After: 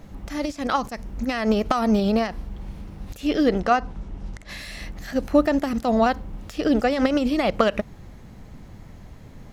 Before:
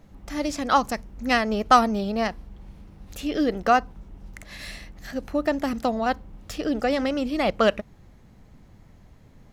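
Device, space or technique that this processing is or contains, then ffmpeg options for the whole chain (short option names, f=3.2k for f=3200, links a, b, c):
de-esser from a sidechain: -filter_complex "[0:a]asplit=2[a][b];[b]highpass=f=6.1k:w=0.5412,highpass=f=6.1k:w=1.3066,apad=whole_len=420150[c];[a][c]sidechaincompress=threshold=-54dB:ratio=4:attack=1.1:release=78,asettb=1/sr,asplit=3[d][e][f];[d]atrim=end=3.494[g];[e]atrim=start=3.49:end=4.49,asetpts=PTS-STARTPTS,afade=t=in:d=0.004:c=qsin,afade=t=out:st=0.996:d=0.004:c=qsin,lowpass=7.9k[h];[f]atrim=start=4.486[i];[g][h]acrossfade=d=0.004:c1=hsin:c2=qsin[j];[j][i]acrossfade=d=0.004:c1=qsin:c2=hsin,volume=8.5dB"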